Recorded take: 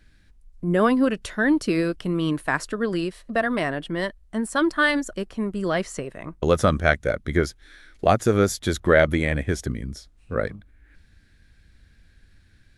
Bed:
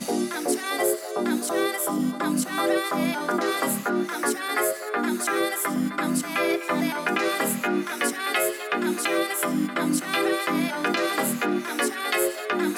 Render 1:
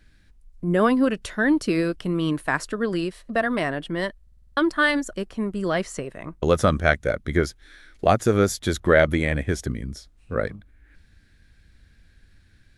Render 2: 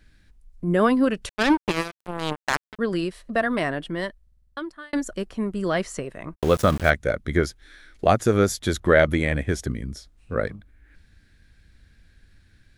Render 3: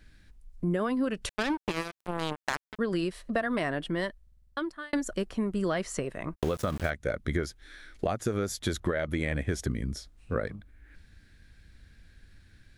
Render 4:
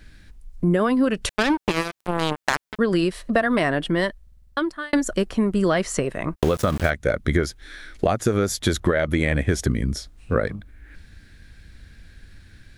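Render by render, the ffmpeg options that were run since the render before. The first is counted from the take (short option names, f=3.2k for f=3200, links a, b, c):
-filter_complex "[0:a]asplit=8[a][b][c][d][e][f][g][h];[a]atrim=end=4.272[i];[b]atrim=start=4.218:end=4.272[j];[c]atrim=start=4.218:end=4.272[k];[d]atrim=start=4.218:end=4.272[l];[e]atrim=start=4.218:end=4.272[m];[f]atrim=start=4.218:end=4.272[n];[g]atrim=start=4.218:end=4.272[o];[h]atrim=start=4.568[p];[i][j]acrossfade=d=0.004:c1=hsin:c2=hsin[q];[q][k]acrossfade=d=0.004:c1=hsin:c2=hsin[r];[r][l]acrossfade=d=0.004:c1=hsin:c2=hsin[s];[s][m]acrossfade=d=0.004:c1=hsin:c2=hsin[t];[t][n]acrossfade=d=0.004:c1=hsin:c2=hsin[u];[u][o]acrossfade=d=0.004:c1=hsin:c2=hsin[v];[v][p]acrossfade=d=0.004:c1=hsin:c2=hsin"
-filter_complex "[0:a]asettb=1/sr,asplit=3[a][b][c];[a]atrim=end=1.294[d];[b]atrim=start=1.29:end=2.79,asetpts=PTS-STARTPTS,afade=t=in:d=0.004:c=qsin,afade=t=out:st=1.496:d=0.004:c=qsin,acrusher=bits=2:mix=0:aa=0.5[e];[c]atrim=start=2.786[f];[d][e]acrossfade=d=0.004:c1=hsin:c2=qsin[g];[g][f]acrossfade=d=0.004:c1=qsin:c2=hsin,asplit=3[h][i][j];[h]afade=t=out:st=6.34:d=0.02[k];[i]aeval=exprs='val(0)*gte(abs(val(0)),0.0335)':c=same,afade=t=in:st=6.34:d=0.02,afade=t=out:st=6.89:d=0.02[l];[j]afade=t=in:st=6.89:d=0.02[m];[k][l][m]amix=inputs=3:normalize=0,asplit=2[n][o];[n]atrim=end=4.93,asetpts=PTS-STARTPTS,afade=t=out:st=3.76:d=1.17[p];[o]atrim=start=4.93,asetpts=PTS-STARTPTS,afade=t=in:d=0.004:c=hsin[q];[p][q]concat=n=2:v=0:a=1"
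-af "alimiter=limit=-12dB:level=0:latency=1:release=429,acompressor=threshold=-25dB:ratio=6"
-af "volume=9dB"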